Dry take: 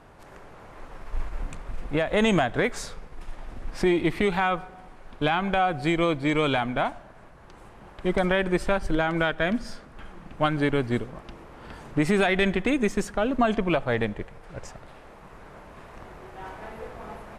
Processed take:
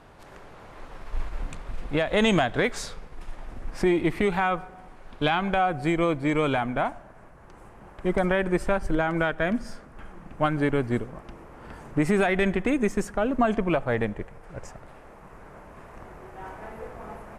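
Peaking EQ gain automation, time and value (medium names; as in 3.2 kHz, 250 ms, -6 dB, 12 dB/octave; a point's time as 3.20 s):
peaking EQ 3.8 kHz 1 oct
2.85 s +3 dB
3.79 s -5 dB
4.74 s -5 dB
5.26 s +3 dB
5.75 s -8 dB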